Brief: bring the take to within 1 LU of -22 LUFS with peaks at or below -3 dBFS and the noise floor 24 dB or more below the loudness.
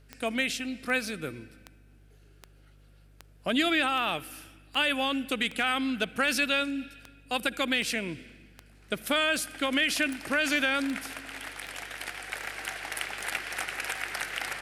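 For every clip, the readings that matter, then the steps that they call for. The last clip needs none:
clicks 19; hum 50 Hz; harmonics up to 150 Hz; hum level -54 dBFS; loudness -29.0 LUFS; peak -14.5 dBFS; loudness target -22.0 LUFS
-> de-click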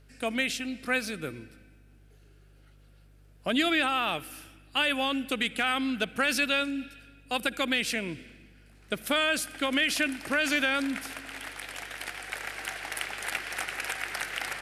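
clicks 0; hum 50 Hz; harmonics up to 150 Hz; hum level -54 dBFS
-> de-hum 50 Hz, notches 3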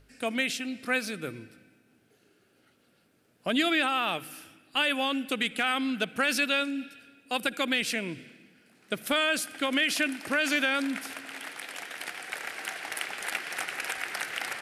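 hum none; loudness -29.0 LUFS; peak -14.5 dBFS; loudness target -22.0 LUFS
-> gain +7 dB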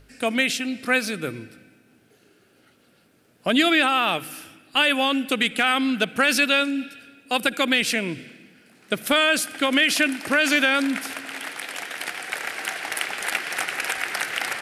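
loudness -22.0 LUFS; peak -7.5 dBFS; noise floor -59 dBFS

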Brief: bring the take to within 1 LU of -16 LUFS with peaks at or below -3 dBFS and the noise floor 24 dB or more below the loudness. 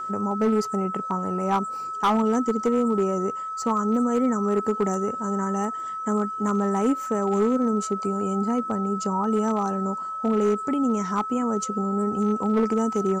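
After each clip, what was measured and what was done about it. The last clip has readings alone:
clipped 0.9%; flat tops at -15.5 dBFS; steady tone 1300 Hz; tone level -29 dBFS; loudness -24.5 LUFS; peak -15.5 dBFS; loudness target -16.0 LUFS
-> clip repair -15.5 dBFS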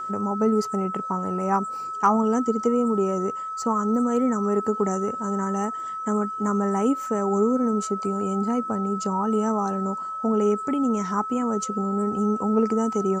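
clipped 0.0%; steady tone 1300 Hz; tone level -29 dBFS
-> notch 1300 Hz, Q 30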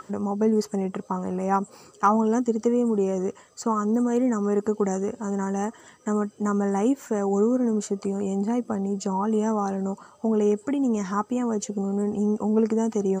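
steady tone none; loudness -25.0 LUFS; peak -7.5 dBFS; loudness target -16.0 LUFS
-> gain +9 dB; limiter -3 dBFS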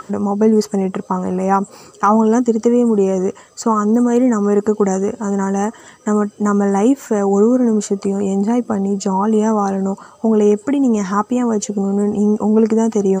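loudness -16.0 LUFS; peak -3.0 dBFS; noise floor -44 dBFS

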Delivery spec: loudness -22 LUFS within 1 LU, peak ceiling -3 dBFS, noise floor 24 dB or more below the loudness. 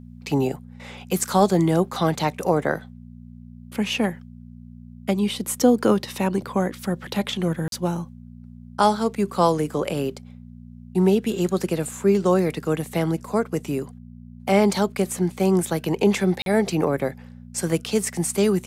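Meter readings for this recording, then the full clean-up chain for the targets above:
dropouts 2; longest dropout 42 ms; hum 60 Hz; harmonics up to 240 Hz; hum level -40 dBFS; loudness -23.0 LUFS; peak -5.0 dBFS; loudness target -22.0 LUFS
-> interpolate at 7.68/16.42, 42 ms; de-hum 60 Hz, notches 4; gain +1 dB

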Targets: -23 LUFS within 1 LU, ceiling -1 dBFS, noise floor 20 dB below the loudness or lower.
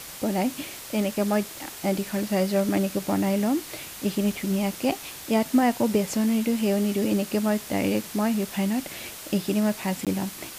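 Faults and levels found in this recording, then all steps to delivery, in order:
dropouts 1; longest dropout 17 ms; noise floor -40 dBFS; noise floor target -46 dBFS; loudness -25.5 LUFS; peak -9.0 dBFS; loudness target -23.0 LUFS
-> interpolate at 10.05, 17 ms; noise print and reduce 6 dB; gain +2.5 dB

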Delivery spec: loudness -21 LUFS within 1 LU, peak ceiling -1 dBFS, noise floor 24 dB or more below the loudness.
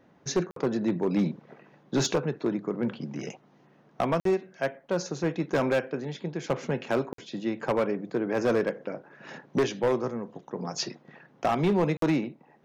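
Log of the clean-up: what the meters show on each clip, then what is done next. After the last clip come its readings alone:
clipped 1.2%; flat tops at -18.5 dBFS; dropouts 4; longest dropout 53 ms; loudness -29.0 LUFS; peak -18.5 dBFS; loudness target -21.0 LUFS
-> clip repair -18.5 dBFS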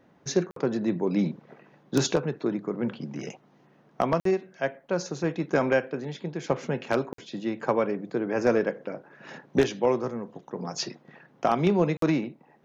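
clipped 0.0%; dropouts 4; longest dropout 53 ms
-> interpolate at 0.51/4.2/7.13/11.97, 53 ms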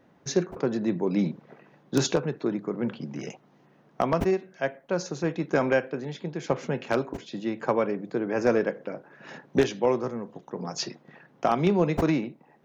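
dropouts 0; loudness -28.0 LUFS; peak -9.5 dBFS; loudness target -21.0 LUFS
-> gain +7 dB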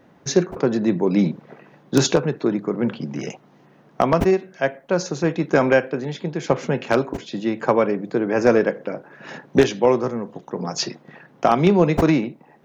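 loudness -21.0 LUFS; peak -2.5 dBFS; noise floor -53 dBFS

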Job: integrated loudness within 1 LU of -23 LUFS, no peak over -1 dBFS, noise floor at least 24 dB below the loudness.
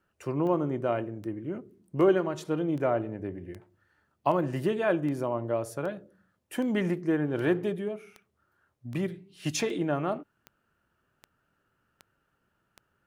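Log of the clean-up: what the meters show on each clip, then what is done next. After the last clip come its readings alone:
clicks 17; loudness -30.0 LUFS; peak -12.0 dBFS; loudness target -23.0 LUFS
-> de-click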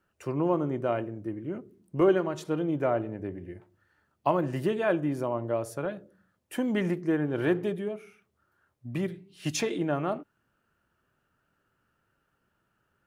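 clicks 0; loudness -30.0 LUFS; peak -12.0 dBFS; loudness target -23.0 LUFS
-> gain +7 dB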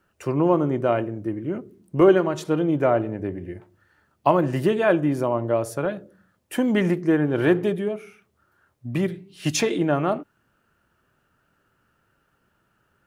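loudness -23.0 LUFS; peak -5.0 dBFS; noise floor -69 dBFS

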